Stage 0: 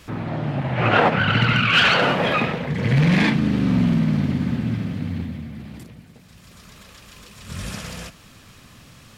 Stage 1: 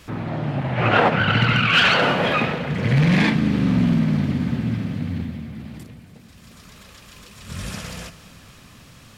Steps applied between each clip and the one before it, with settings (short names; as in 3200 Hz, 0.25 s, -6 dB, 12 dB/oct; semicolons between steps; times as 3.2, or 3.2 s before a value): reverb RT60 3.6 s, pre-delay 82 ms, DRR 15 dB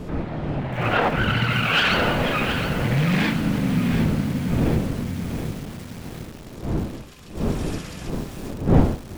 wind noise 270 Hz -23 dBFS; lo-fi delay 0.723 s, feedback 55%, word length 5-bit, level -8 dB; gain -4 dB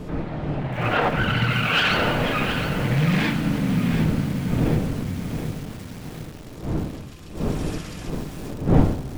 shoebox room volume 2300 m³, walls mixed, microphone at 0.47 m; gain -1 dB